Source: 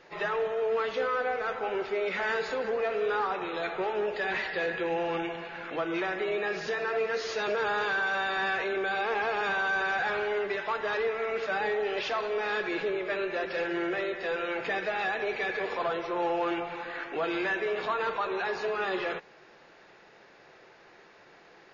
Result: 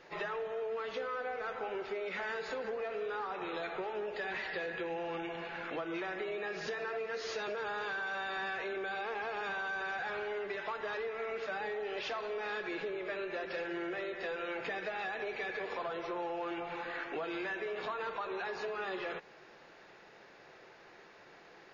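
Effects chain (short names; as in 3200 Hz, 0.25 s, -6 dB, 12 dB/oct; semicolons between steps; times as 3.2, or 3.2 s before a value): compressor, threshold -34 dBFS, peak gain reduction 8.5 dB; gain -1.5 dB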